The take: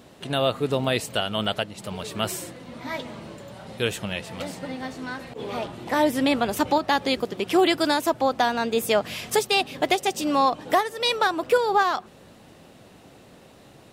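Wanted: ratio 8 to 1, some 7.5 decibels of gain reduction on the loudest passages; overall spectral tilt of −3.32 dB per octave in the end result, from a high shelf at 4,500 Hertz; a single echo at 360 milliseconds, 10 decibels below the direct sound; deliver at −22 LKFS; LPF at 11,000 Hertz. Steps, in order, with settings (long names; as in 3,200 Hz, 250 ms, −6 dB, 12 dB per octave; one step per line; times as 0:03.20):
low-pass filter 11,000 Hz
high-shelf EQ 4,500 Hz +5.5 dB
downward compressor 8 to 1, threshold −22 dBFS
single-tap delay 360 ms −10 dB
level +6 dB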